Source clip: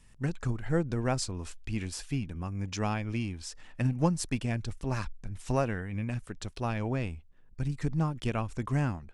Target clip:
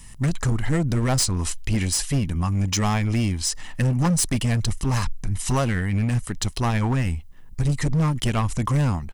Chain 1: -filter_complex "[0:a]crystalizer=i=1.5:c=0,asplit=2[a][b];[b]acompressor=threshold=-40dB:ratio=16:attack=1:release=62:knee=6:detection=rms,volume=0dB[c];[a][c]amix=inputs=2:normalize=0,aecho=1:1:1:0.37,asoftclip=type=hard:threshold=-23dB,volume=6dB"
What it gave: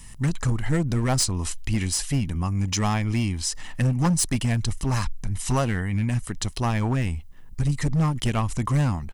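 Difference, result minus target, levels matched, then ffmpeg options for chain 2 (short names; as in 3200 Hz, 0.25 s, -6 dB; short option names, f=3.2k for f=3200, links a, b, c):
compressor: peak gain reduction +11 dB
-filter_complex "[0:a]crystalizer=i=1.5:c=0,asplit=2[a][b];[b]acompressor=threshold=-28dB:ratio=16:attack=1:release=62:knee=6:detection=rms,volume=0dB[c];[a][c]amix=inputs=2:normalize=0,aecho=1:1:1:0.37,asoftclip=type=hard:threshold=-23dB,volume=6dB"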